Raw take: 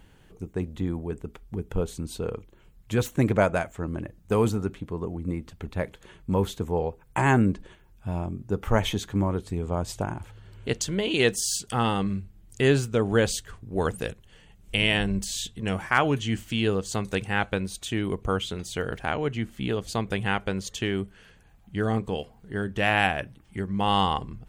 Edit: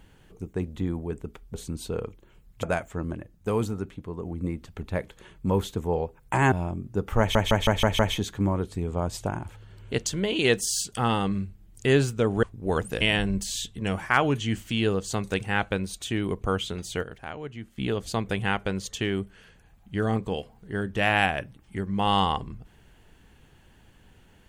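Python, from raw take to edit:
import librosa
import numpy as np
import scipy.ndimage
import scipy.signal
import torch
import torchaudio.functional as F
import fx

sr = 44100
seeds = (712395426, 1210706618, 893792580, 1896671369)

y = fx.edit(x, sr, fx.cut(start_s=1.54, length_s=0.3),
    fx.cut(start_s=2.93, length_s=0.54),
    fx.clip_gain(start_s=3.98, length_s=1.11, db=-3.5),
    fx.cut(start_s=7.36, length_s=0.71),
    fx.stutter(start_s=8.74, slice_s=0.16, count=6),
    fx.cut(start_s=13.18, length_s=0.34),
    fx.cut(start_s=14.1, length_s=0.72),
    fx.clip_gain(start_s=18.84, length_s=0.75, db=-9.5), tone=tone)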